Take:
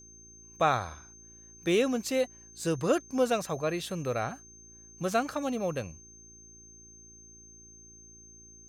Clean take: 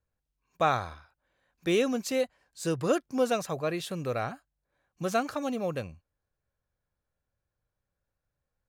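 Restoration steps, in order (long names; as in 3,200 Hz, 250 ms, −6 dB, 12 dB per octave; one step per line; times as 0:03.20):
hum removal 56.2 Hz, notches 7
notch filter 6,300 Hz, Q 30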